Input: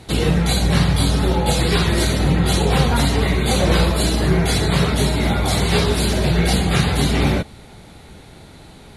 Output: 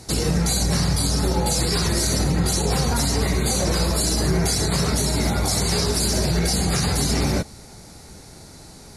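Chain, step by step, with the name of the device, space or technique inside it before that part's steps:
over-bright horn tweeter (high shelf with overshoot 4,200 Hz +7.5 dB, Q 3; brickwall limiter −9.5 dBFS, peak gain reduction 7 dB)
level −2 dB

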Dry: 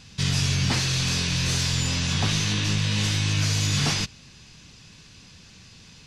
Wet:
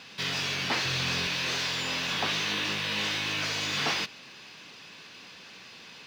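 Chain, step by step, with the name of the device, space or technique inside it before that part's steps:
phone line with mismatched companding (band-pass filter 400–3,500 Hz; mu-law and A-law mismatch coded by mu)
0:00.85–0:01.27: parametric band 95 Hz +12.5 dB 1.5 octaves

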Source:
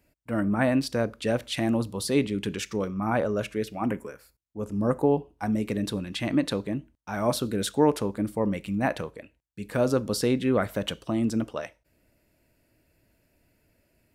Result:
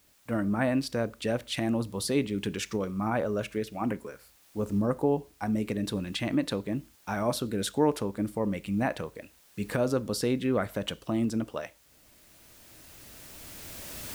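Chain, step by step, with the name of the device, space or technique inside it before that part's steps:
cheap recorder with automatic gain (white noise bed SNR 34 dB; camcorder AGC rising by 9.6 dB per second)
level −3.5 dB

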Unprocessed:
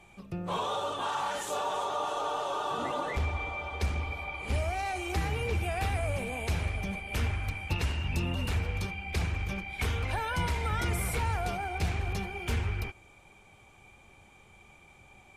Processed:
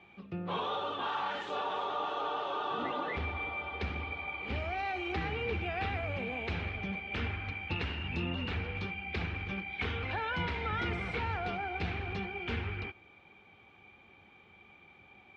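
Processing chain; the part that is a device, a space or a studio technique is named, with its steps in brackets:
guitar cabinet (loudspeaker in its box 110–3,700 Hz, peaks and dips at 130 Hz −8 dB, 610 Hz −6 dB, 980 Hz −4 dB)

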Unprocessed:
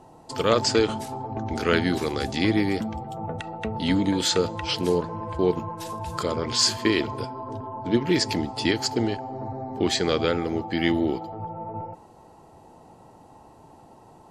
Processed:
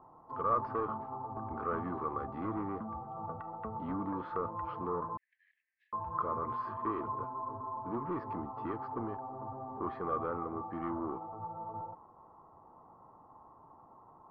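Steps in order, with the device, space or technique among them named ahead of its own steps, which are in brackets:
overdriven synthesiser ladder filter (soft clipping −19 dBFS, distortion −11 dB; transistor ladder low-pass 1,200 Hz, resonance 85%)
0:05.17–0:05.93: Chebyshev high-pass filter 1,700 Hz, order 10

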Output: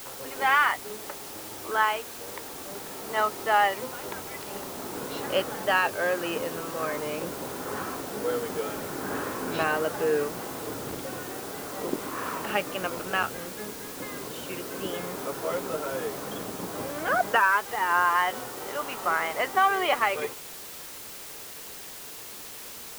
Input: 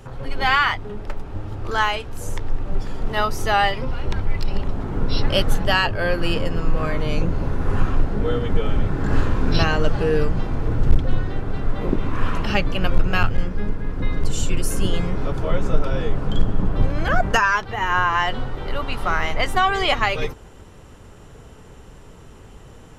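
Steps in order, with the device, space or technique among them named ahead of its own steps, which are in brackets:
wax cylinder (band-pass filter 360–2,200 Hz; tape wow and flutter; white noise bed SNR 12 dB)
level −2.5 dB

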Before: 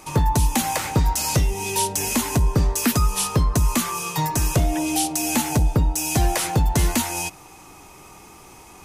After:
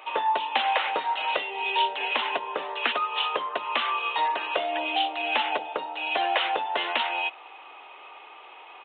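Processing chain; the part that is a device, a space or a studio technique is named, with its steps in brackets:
musical greeting card (downsampling to 8,000 Hz; high-pass filter 510 Hz 24 dB per octave; parametric band 2,900 Hz +7 dB 0.28 octaves)
level +1.5 dB

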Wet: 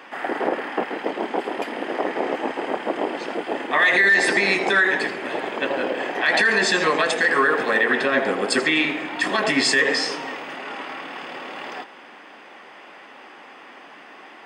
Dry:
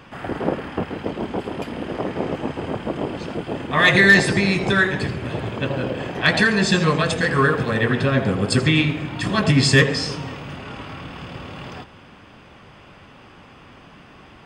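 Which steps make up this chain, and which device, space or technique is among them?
laptop speaker (high-pass filter 280 Hz 24 dB per octave; parametric band 800 Hz +5 dB 0.58 octaves; parametric band 1,900 Hz +7.5 dB 0.5 octaves; brickwall limiter −10 dBFS, peak gain reduction 13.5 dB)
level +1 dB

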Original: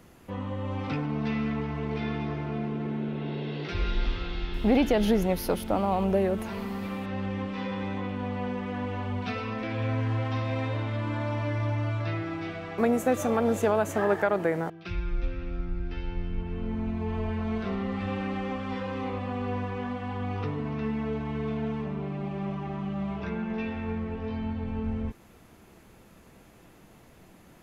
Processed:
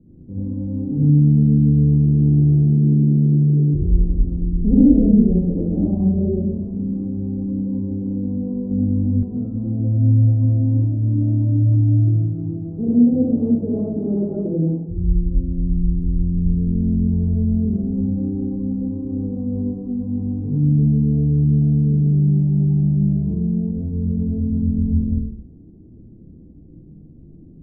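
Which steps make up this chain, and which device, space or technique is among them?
next room (low-pass filter 320 Hz 24 dB per octave; convolution reverb RT60 0.75 s, pre-delay 59 ms, DRR −7.5 dB)
0:08.69–0:09.23: flutter between parallel walls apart 3.4 metres, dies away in 0.43 s
level +4.5 dB

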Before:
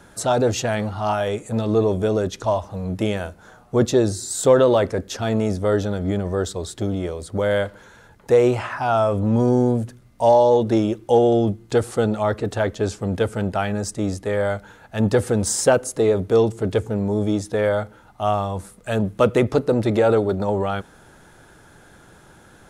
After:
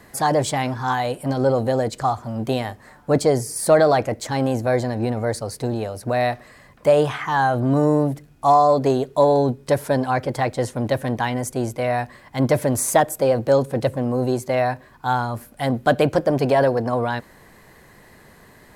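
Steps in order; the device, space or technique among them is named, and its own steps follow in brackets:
nightcore (speed change +21%)

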